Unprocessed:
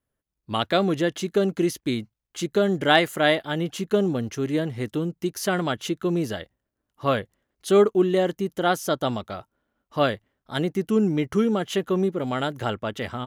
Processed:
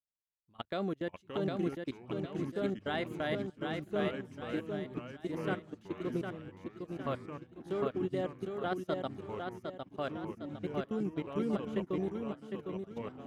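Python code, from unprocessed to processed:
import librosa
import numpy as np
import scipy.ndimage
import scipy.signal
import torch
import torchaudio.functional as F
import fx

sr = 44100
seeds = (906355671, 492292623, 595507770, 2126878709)

y = fx.level_steps(x, sr, step_db=23)
y = fx.high_shelf(y, sr, hz=3600.0, db=-7.0)
y = fx.echo_feedback(y, sr, ms=757, feedback_pct=49, wet_db=-3.5)
y = fx.echo_pitch(y, sr, ms=386, semitones=-4, count=3, db_per_echo=-6.0)
y = fx.upward_expand(y, sr, threshold_db=-42.0, expansion=1.5)
y = F.gain(torch.from_numpy(y), -9.0).numpy()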